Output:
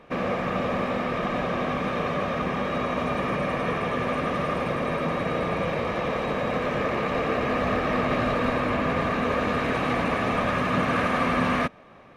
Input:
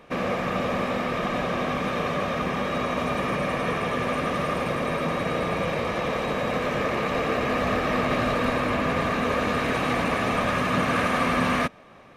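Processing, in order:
high-shelf EQ 4,900 Hz −9.5 dB

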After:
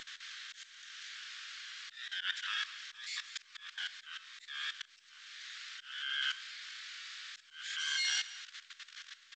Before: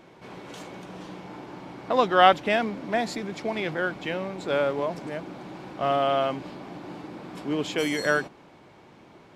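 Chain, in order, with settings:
Butterworth high-pass 3,000 Hz 48 dB per octave
in parallel at −1 dB: downward compressor 6 to 1, threshold −51 dBFS, peak gain reduction 22.5 dB
on the sum: pitch vibrato 3.9 Hz 7.9 cents
single-tap delay 191 ms −19.5 dB
on a send at −4.5 dB: convolution reverb RT60 0.30 s, pre-delay 4 ms
on the sum: pitch-shifted copies added −12 semitones −1 dB, −7 semitones −13 dB
output level in coarse steps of 15 dB
volume swells 524 ms
level +12.5 dB
G.722 64 kbit/s 16,000 Hz

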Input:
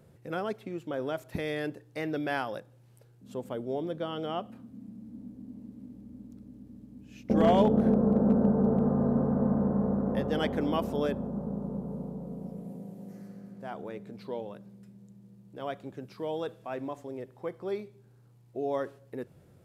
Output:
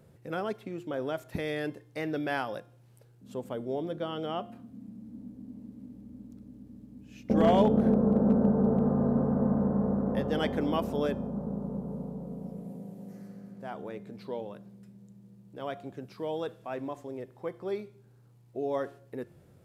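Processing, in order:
hum removal 351.1 Hz, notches 31

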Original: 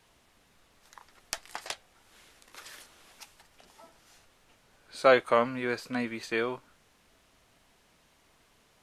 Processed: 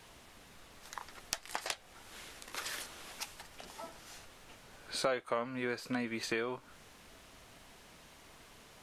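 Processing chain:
downward compressor 4 to 1, threshold −42 dBFS, peak gain reduction 21.5 dB
level +7.5 dB

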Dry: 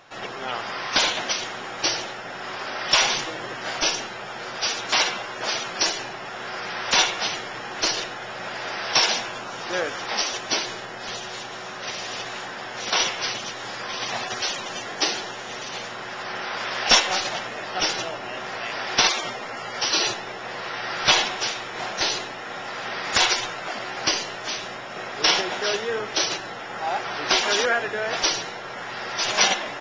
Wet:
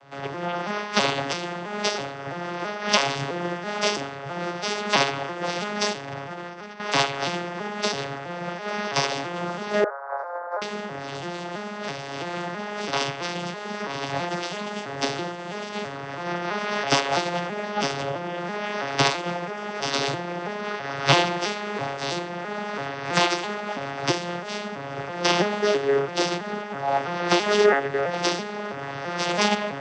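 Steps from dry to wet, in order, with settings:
vocoder with an arpeggio as carrier major triad, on C#3, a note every 330 ms
0:05.93–0:06.80: compressor whose output falls as the input rises −35 dBFS, ratio −0.5
0:09.84–0:10.62: elliptic band-pass filter 520–1,500 Hz, stop band 40 dB
amplitude modulation by smooth noise, depth 60%
level +4 dB

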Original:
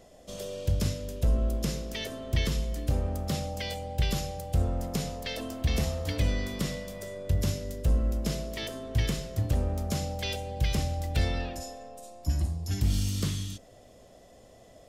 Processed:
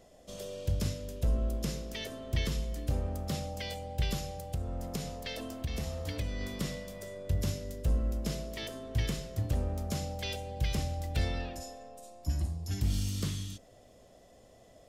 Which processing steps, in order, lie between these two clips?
0:04.15–0:06.41: downward compressor, threshold −27 dBFS, peak gain reduction 7 dB
level −4 dB

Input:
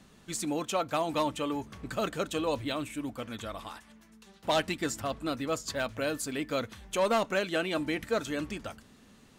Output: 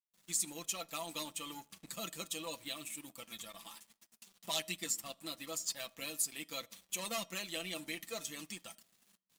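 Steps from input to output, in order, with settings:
spectral magnitudes quantised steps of 15 dB
first-order pre-emphasis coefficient 0.97
notch filter 1,500 Hz, Q 5.7
noise gate with hold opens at −58 dBFS
parametric band 200 Hz +13 dB 1.3 octaves
comb filter 6 ms, depth 66%
in parallel at +3 dB: downward compressor, threshold −55 dBFS, peak gain reduction 21.5 dB
on the sum: dead-zone distortion −56.5 dBFS
tuned comb filter 630 Hz, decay 0.35 s, mix 40%
on a send at −20 dB: convolution reverb RT60 0.55 s, pre-delay 3 ms
on the sum: level +5 dB

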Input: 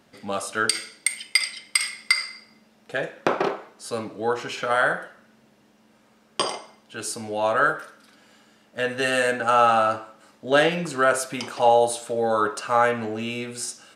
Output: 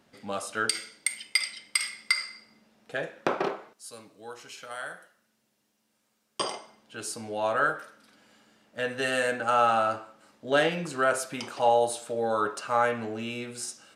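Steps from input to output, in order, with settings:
0:03.73–0:06.40: first-order pre-emphasis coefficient 0.8
level −5 dB

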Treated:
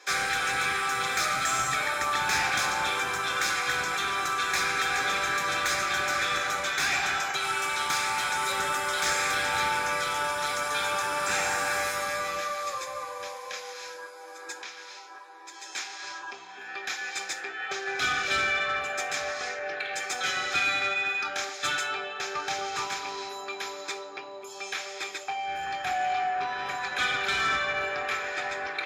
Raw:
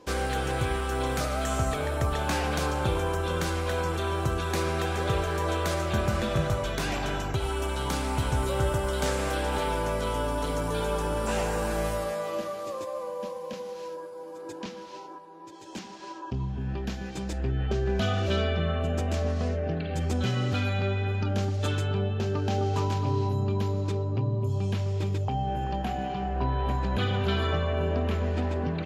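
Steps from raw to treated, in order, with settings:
high-pass filter 730 Hz 24 dB per octave
0:14.59–0:15.15: downward compressor 3 to 1, threshold −47 dBFS, peak gain reduction 7 dB
soft clipping −31 dBFS, distortion −14 dB
convolution reverb RT60 0.55 s, pre-delay 3 ms, DRR 8 dB
level +3 dB

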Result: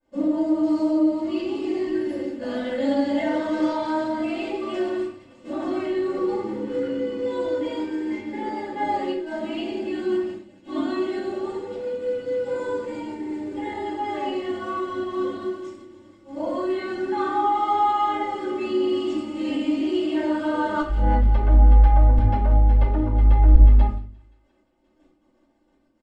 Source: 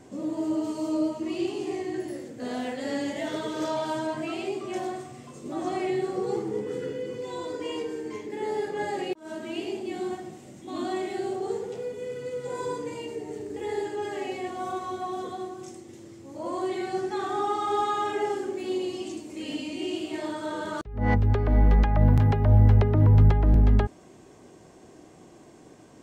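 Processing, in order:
bit reduction 10 bits
high-frequency loss of the air 75 metres
notch filter 6,200 Hz, Q 6.2
on a send: delay with a high-pass on its return 175 ms, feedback 81%, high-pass 1,800 Hz, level −13.5 dB
on the sum: downward compressor 2 to 1, threshold −32 dBFS, peak gain reduction 10.5 dB
high-shelf EQ 7,500 Hz −5 dB
comb filter 3.4 ms, depth 98%
downward expander −33 dBFS
rectangular room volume 210 cubic metres, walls furnished, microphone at 5.3 metres
level −5.5 dB

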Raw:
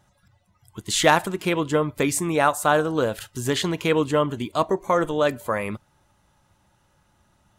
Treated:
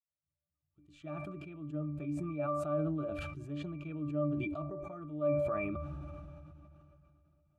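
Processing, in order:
fade in at the beginning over 2.13 s
resonances in every octave D, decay 0.21 s
level that may fall only so fast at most 20 dB per second
level −7.5 dB

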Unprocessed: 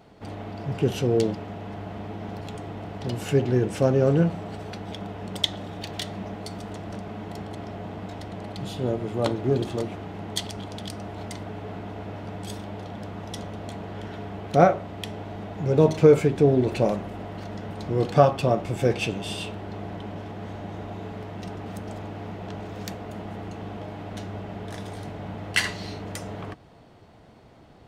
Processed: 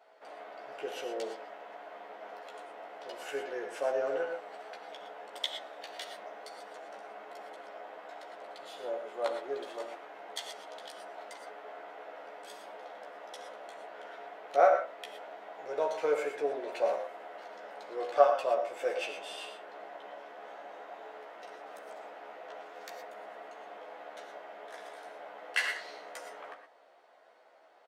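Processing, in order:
four-pole ladder high-pass 470 Hz, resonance 40%
parametric band 1,600 Hz +7 dB 1.2 octaves
double-tracking delay 14 ms −4 dB
reverb whose tail is shaped and stops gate 140 ms rising, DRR 6 dB
level −5 dB

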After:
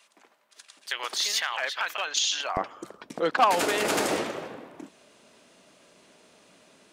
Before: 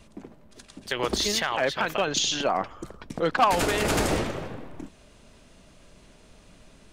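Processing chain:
high-pass filter 1,100 Hz 12 dB per octave, from 0:02.57 280 Hz

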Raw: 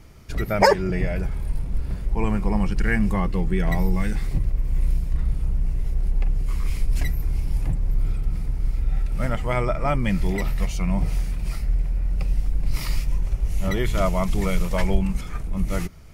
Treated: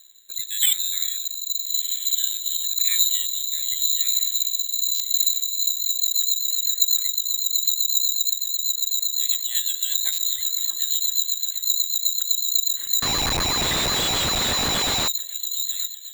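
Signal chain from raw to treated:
sub-octave generator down 2 octaves, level −6 dB
parametric band 1,300 Hz −11.5 dB 0.22 octaves
feedback delay with all-pass diffusion 1,421 ms, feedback 60%, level −16 dB
voice inversion scrambler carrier 4,000 Hz
rotating-speaker cabinet horn 0.9 Hz, later 8 Hz, at 0:05.25
bad sample-rate conversion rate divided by 4×, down filtered, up zero stuff
0:13.02–0:15.08: comparator with hysteresis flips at −19.5 dBFS
buffer that repeats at 0:04.94/0:10.12, samples 512, times 4
level −8.5 dB

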